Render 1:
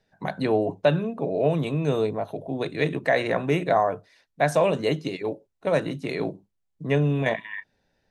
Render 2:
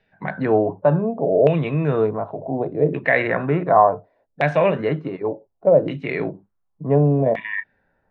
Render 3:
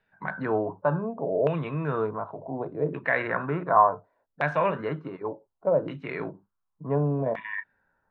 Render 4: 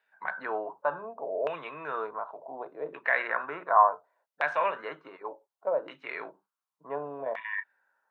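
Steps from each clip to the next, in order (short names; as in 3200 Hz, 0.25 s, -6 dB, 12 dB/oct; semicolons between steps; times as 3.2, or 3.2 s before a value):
LFO low-pass saw down 0.68 Hz 530–2700 Hz; harmonic-percussive split harmonic +6 dB; gain -1 dB
band shelf 1200 Hz +9 dB 1 oct; gain -9 dB
HPF 700 Hz 12 dB/oct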